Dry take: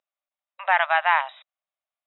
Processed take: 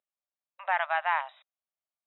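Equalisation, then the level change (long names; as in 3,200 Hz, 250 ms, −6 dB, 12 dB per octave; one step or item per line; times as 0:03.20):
high-shelf EQ 2,800 Hz −7 dB
−6.5 dB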